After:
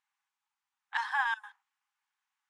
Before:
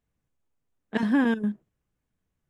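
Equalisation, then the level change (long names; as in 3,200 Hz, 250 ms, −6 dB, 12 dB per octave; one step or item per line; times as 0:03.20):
dynamic equaliser 2,500 Hz, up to −7 dB, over −49 dBFS, Q 1.8
linear-phase brick-wall high-pass 760 Hz
high-frequency loss of the air 59 metres
+4.5 dB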